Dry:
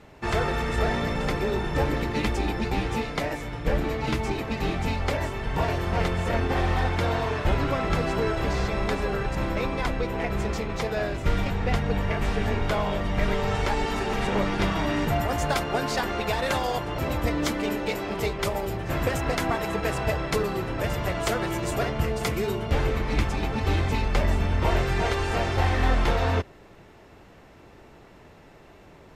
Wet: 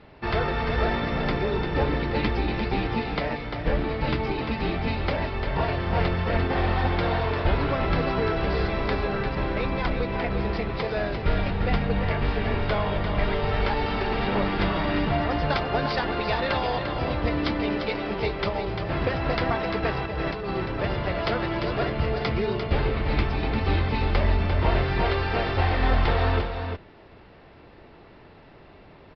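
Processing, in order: 20.05–20.51 negative-ratio compressor -31 dBFS, ratio -1; on a send: echo 0.347 s -7 dB; on the sum: downsampling 11025 Hz

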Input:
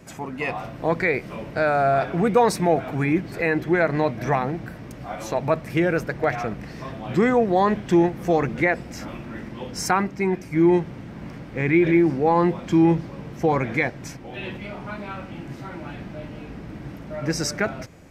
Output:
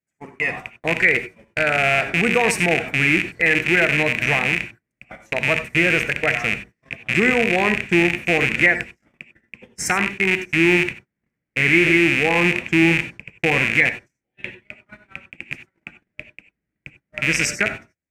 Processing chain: rattling part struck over -30 dBFS, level -12 dBFS; gate -29 dBFS, range -44 dB; ten-band EQ 1000 Hz -7 dB, 2000 Hz +12 dB, 4000 Hz -6 dB, 8000 Hz +9 dB; non-linear reverb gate 0.11 s rising, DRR 10 dB; gain -1 dB

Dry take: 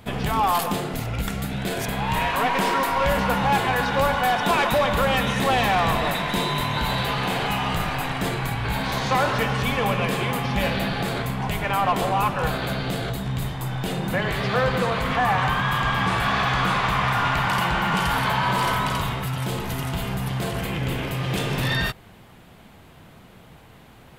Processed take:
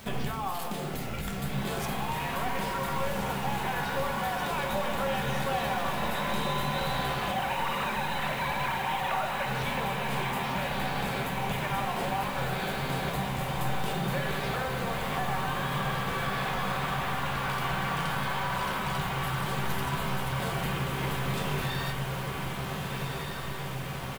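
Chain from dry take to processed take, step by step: 7.31–9.46 sine-wave speech; notches 60/120/180/240/300/360 Hz; compressor 16:1, threshold -30 dBFS, peak gain reduction 18 dB; bit-crush 8-bit; doubler 13 ms -11.5 dB; diffused feedback echo 1.48 s, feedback 71%, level -4 dB; shoebox room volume 850 m³, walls furnished, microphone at 1.1 m; gain -1 dB

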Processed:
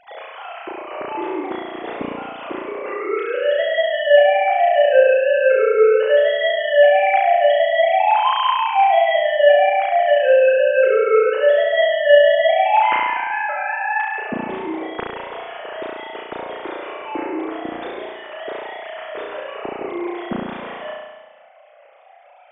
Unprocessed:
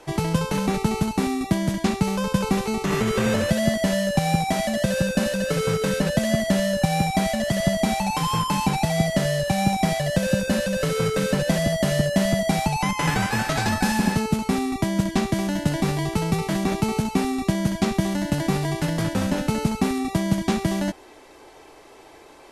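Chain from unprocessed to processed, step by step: sine-wave speech; flutter echo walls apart 5.9 m, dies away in 1.2 s

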